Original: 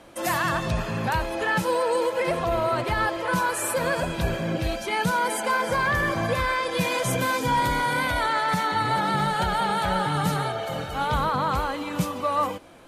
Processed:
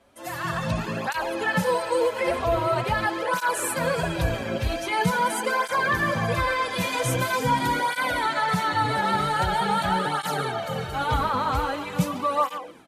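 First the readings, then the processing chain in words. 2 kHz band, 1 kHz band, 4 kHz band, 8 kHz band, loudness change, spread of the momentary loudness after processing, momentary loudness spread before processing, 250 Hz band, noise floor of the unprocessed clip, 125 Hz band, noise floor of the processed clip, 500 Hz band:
0.0 dB, 0.0 dB, 0.0 dB, -0.5 dB, 0.0 dB, 5 LU, 4 LU, -0.5 dB, -33 dBFS, 0.0 dB, -36 dBFS, 0.0 dB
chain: level rider gain up to 13 dB; speakerphone echo 140 ms, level -9 dB; cancelling through-zero flanger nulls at 0.44 Hz, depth 6.6 ms; trim -8 dB

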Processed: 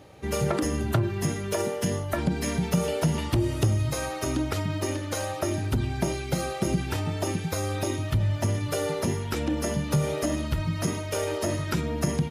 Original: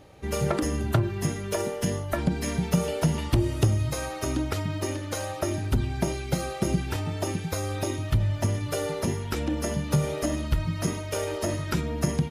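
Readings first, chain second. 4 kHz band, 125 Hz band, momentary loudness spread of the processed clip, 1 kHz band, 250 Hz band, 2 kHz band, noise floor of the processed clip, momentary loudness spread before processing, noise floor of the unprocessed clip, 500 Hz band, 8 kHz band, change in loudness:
+1.0 dB, 0.0 dB, 4 LU, +1.0 dB, +0.5 dB, +1.0 dB, -34 dBFS, 5 LU, -35 dBFS, +1.0 dB, +1.0 dB, +0.5 dB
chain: high-pass 67 Hz; in parallel at -1.5 dB: peak limiter -20.5 dBFS, peak gain reduction 11 dB; on the sum: trim -3.5 dB

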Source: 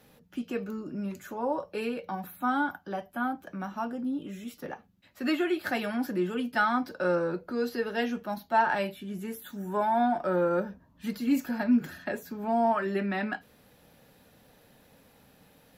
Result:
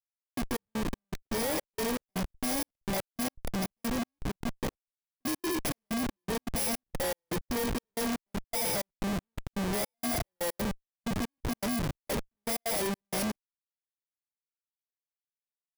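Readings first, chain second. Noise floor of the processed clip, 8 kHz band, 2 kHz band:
under -85 dBFS, +16.5 dB, -6.0 dB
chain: bit-reversed sample order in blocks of 32 samples; dynamic bell 530 Hz, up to +5 dB, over -44 dBFS, Q 2.5; Schmitt trigger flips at -36.5 dBFS; trance gate ".x.xxx..xx." 160 bpm -60 dB

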